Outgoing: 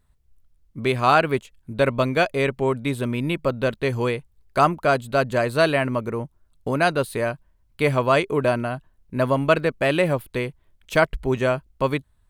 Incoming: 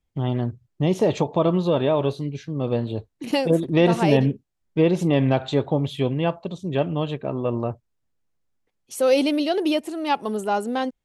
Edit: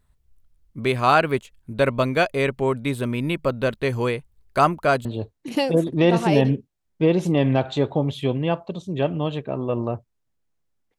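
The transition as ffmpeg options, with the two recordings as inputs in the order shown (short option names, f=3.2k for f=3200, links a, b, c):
-filter_complex "[0:a]apad=whole_dur=10.98,atrim=end=10.98,atrim=end=5.052[a];[1:a]atrim=start=2.808:end=8.74[b];[a][b]acrossfade=d=0.004:c1=hsin:c2=hsin"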